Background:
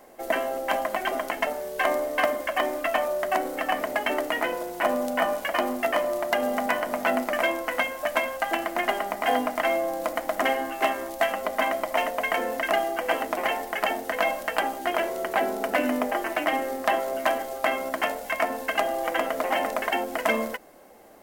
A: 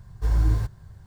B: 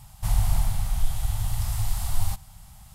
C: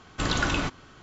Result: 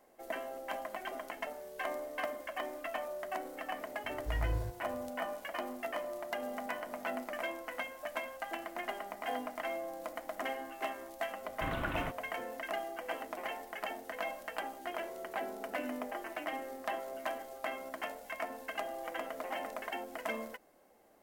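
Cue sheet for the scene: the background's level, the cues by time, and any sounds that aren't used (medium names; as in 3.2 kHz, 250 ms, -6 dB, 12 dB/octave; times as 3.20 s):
background -14 dB
4.04 s: add A -13.5 dB
11.42 s: add C -11 dB + inverse Chebyshev low-pass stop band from 5.5 kHz
not used: B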